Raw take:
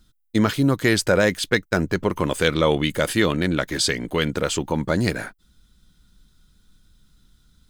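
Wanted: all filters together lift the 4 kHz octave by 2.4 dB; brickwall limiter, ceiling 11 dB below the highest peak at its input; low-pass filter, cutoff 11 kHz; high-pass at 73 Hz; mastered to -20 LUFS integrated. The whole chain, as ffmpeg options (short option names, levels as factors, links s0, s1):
-af "highpass=73,lowpass=11000,equalizer=f=4000:t=o:g=3,volume=1.88,alimiter=limit=0.398:level=0:latency=1"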